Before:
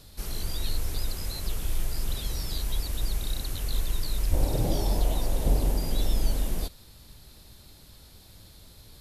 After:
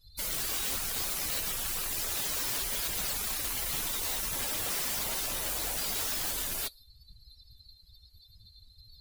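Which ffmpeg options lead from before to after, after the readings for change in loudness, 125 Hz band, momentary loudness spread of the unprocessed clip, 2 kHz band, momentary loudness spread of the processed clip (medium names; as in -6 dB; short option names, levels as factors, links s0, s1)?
+0.5 dB, -17.0 dB, 23 LU, +7.5 dB, 1 LU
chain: -filter_complex "[0:a]lowshelf=f=270:g=-8,acrossover=split=640[s0][s1];[s0]acompressor=threshold=0.01:ratio=6[s2];[s2][s1]amix=inputs=2:normalize=0,highshelf=f=2200:g=6.5,aeval=exprs='(mod(33.5*val(0)+1,2)-1)/33.5':c=same,afftdn=nr=32:nf=-44,volume=1.88"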